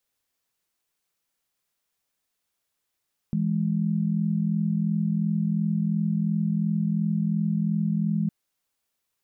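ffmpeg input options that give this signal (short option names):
-f lavfi -i "aevalsrc='0.0596*(sin(2*PI*164.81*t)+sin(2*PI*207.65*t))':d=4.96:s=44100"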